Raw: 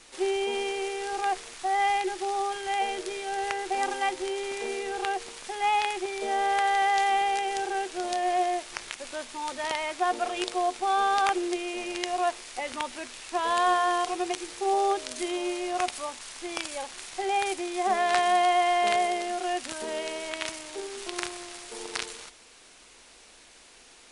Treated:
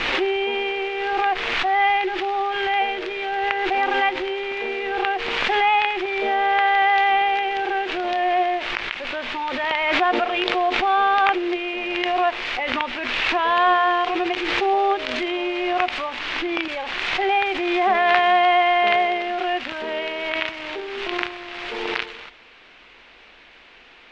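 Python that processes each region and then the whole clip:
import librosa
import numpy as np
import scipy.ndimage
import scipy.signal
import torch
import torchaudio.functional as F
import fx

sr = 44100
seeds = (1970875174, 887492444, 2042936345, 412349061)

y = fx.chain(x, sr, fx.lowpass(hz=7800.0, slope=12),
    fx.peak_eq(hz=310.0, db=13.0, octaves=0.32), at=(16.2, 16.68))
y = scipy.signal.sosfilt(scipy.signal.butter(4, 2800.0, 'lowpass', fs=sr, output='sos'), y)
y = fx.high_shelf(y, sr, hz=2000.0, db=11.5)
y = fx.pre_swell(y, sr, db_per_s=24.0)
y = y * 10.0 ** (4.0 / 20.0)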